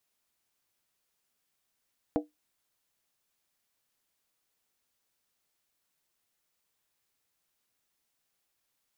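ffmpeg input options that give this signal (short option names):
-f lavfi -i "aevalsrc='0.0794*pow(10,-3*t/0.17)*sin(2*PI*301*t)+0.0531*pow(10,-3*t/0.135)*sin(2*PI*479.8*t)+0.0355*pow(10,-3*t/0.116)*sin(2*PI*642.9*t)+0.0237*pow(10,-3*t/0.112)*sin(2*PI*691.1*t)+0.0158*pow(10,-3*t/0.104)*sin(2*PI*798.6*t)':d=0.63:s=44100"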